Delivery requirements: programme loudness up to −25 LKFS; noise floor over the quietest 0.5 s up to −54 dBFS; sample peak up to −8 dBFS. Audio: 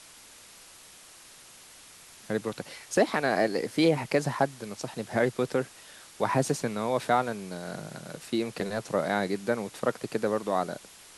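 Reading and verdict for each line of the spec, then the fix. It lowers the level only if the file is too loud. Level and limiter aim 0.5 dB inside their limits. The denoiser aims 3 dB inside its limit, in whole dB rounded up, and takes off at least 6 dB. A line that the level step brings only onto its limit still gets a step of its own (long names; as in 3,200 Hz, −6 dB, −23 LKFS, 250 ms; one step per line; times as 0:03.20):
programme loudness −29.0 LKFS: in spec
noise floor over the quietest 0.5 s −51 dBFS: out of spec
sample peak −11.0 dBFS: in spec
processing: broadband denoise 6 dB, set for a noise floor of −51 dBFS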